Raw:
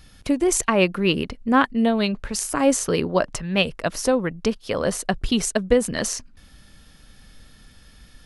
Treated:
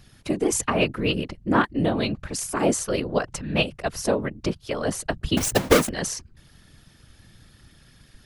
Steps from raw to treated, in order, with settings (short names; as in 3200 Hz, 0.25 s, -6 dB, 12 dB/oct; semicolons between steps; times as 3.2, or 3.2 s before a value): 5.37–5.89 half-waves squared off; whisperiser; gain -3 dB